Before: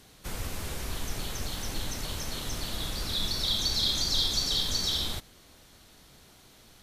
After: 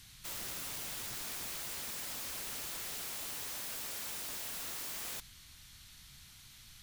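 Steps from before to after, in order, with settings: FFT filter 130 Hz 0 dB, 490 Hz -23 dB, 980 Hz -8 dB, 2.2 kHz +1 dB, 12 kHz +2 dB; peak limiter -25.5 dBFS, peak gain reduction 11 dB; integer overflow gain 37 dB

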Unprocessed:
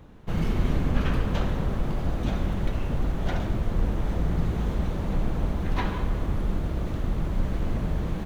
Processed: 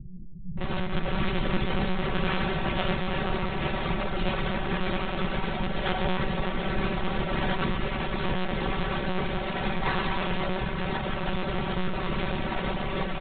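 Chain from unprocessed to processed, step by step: one-bit delta coder 64 kbps, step -25.5 dBFS; bass shelf 130 Hz -8.5 dB; feedback comb 56 Hz, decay 0.45 s, harmonics all, mix 50%; bands offset in time lows, highs 380 ms, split 160 Hz; monotone LPC vocoder at 8 kHz 180 Hz; granular stretch 1.6×, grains 28 ms; trim +8 dB

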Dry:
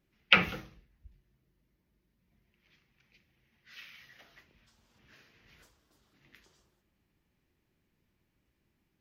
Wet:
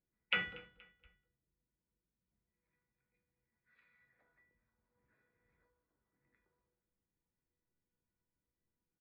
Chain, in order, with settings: local Wiener filter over 15 samples; resonant high shelf 3.7 kHz -10.5 dB, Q 1.5; feedback comb 490 Hz, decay 0.47 s, mix 90%; feedback delay 237 ms, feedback 42%, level -21.5 dB; trim +3 dB

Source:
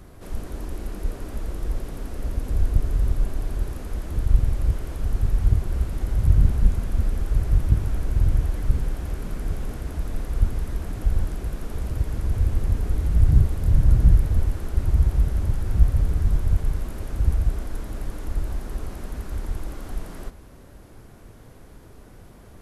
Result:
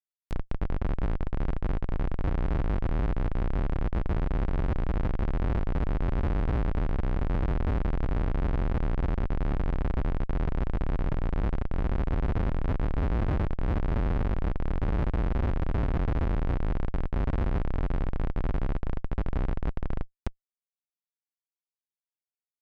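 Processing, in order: Schmitt trigger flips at -26.5 dBFS; low-pass that closes with the level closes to 1.9 kHz, closed at -22 dBFS; trim -4 dB

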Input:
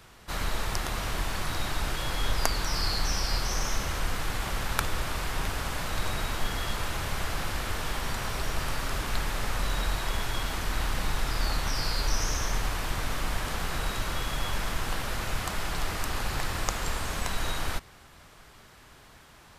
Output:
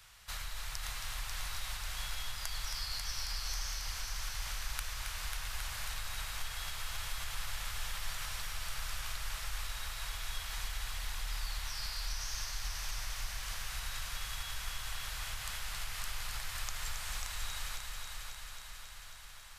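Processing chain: compression, threshold -32 dBFS, peak gain reduction 12 dB; amplifier tone stack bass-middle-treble 10-0-10; on a send: multi-head delay 271 ms, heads first and second, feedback 68%, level -7.5 dB

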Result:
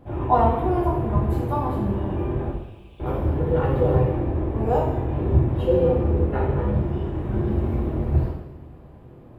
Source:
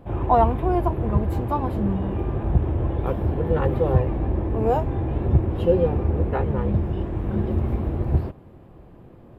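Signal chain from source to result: 2.50–3.00 s: Chebyshev high-pass 2.5 kHz, order 5; two-slope reverb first 0.86 s, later 2.9 s, from -19 dB, DRR -3 dB; trim -4.5 dB

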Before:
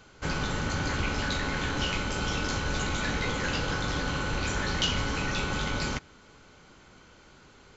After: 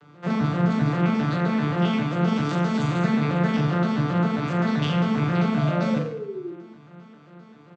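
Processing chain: vocoder on a broken chord minor triad, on D3, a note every 132 ms; 2.36–3.01 s: treble shelf 6.3 kHz +11 dB; 5.57–6.53 s: painted sound fall 330–690 Hz -41 dBFS; distance through air 97 m; reverse bouncing-ball echo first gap 40 ms, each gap 1.15×, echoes 5; trim +6.5 dB

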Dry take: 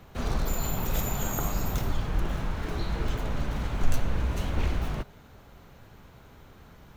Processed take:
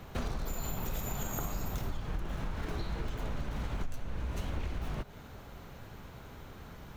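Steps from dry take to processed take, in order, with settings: compression 12:1, threshold -34 dBFS, peak gain reduction 20 dB; trim +3 dB

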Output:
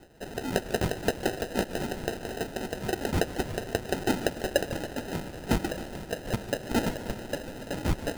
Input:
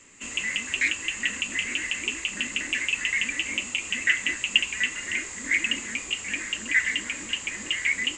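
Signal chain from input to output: reverse; upward compressor, threshold -37 dBFS; reverse; LFO high-pass sine 1.9 Hz 430–4600 Hz; sample-and-hold 39×; modulated delay 147 ms, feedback 57%, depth 139 cents, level -15 dB; trim -4.5 dB

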